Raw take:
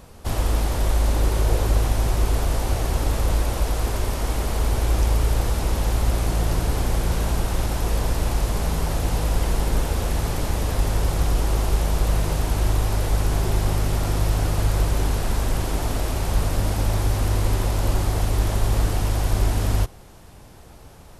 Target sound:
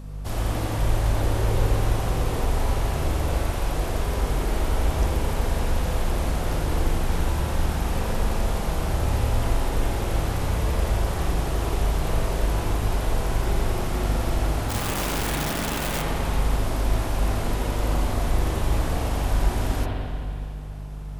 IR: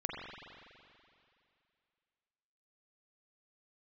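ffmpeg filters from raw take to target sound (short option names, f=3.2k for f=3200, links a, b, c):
-filter_complex "[0:a]asplit=3[a][b][c];[a]afade=t=out:st=14.68:d=0.02[d];[b]aeval=exprs='(mod(10.6*val(0)+1,2)-1)/10.6':c=same,afade=t=in:st=14.68:d=0.02,afade=t=out:st=16.01:d=0.02[e];[c]afade=t=in:st=16.01:d=0.02[f];[d][e][f]amix=inputs=3:normalize=0,aeval=exprs='val(0)+0.0251*(sin(2*PI*50*n/s)+sin(2*PI*2*50*n/s)/2+sin(2*PI*3*50*n/s)/3+sin(2*PI*4*50*n/s)/4+sin(2*PI*5*50*n/s)/5)':c=same[g];[1:a]atrim=start_sample=2205[h];[g][h]afir=irnorm=-1:irlink=0,volume=-3.5dB"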